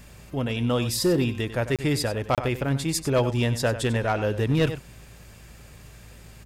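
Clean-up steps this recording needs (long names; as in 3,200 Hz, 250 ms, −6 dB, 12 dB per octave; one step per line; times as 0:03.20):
clipped peaks rebuilt −15 dBFS
hum removal 55.4 Hz, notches 4
repair the gap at 0:01.76/0:02.35, 27 ms
echo removal 95 ms −13 dB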